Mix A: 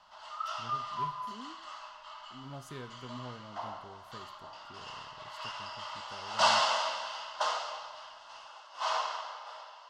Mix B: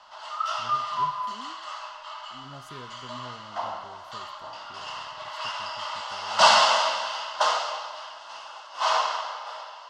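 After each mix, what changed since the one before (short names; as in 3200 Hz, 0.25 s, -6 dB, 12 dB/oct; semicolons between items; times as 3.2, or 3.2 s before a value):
background +8.5 dB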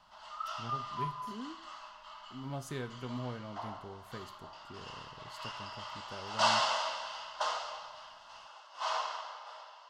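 speech +5.0 dB; background -11.0 dB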